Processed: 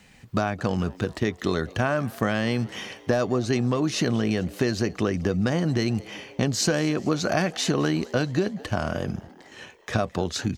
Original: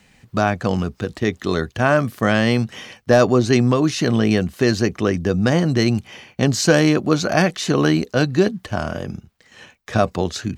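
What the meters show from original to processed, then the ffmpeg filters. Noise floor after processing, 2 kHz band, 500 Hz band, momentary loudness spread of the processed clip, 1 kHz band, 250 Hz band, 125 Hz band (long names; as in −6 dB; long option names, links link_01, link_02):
−51 dBFS, −7.0 dB, −7.5 dB, 7 LU, −7.0 dB, −6.5 dB, −6.0 dB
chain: -filter_complex "[0:a]acompressor=threshold=-20dB:ratio=6,asplit=2[link_01][link_02];[link_02]asplit=5[link_03][link_04][link_05][link_06][link_07];[link_03]adelay=216,afreqshift=85,volume=-22.5dB[link_08];[link_04]adelay=432,afreqshift=170,volume=-26.8dB[link_09];[link_05]adelay=648,afreqshift=255,volume=-31.1dB[link_10];[link_06]adelay=864,afreqshift=340,volume=-35.4dB[link_11];[link_07]adelay=1080,afreqshift=425,volume=-39.7dB[link_12];[link_08][link_09][link_10][link_11][link_12]amix=inputs=5:normalize=0[link_13];[link_01][link_13]amix=inputs=2:normalize=0"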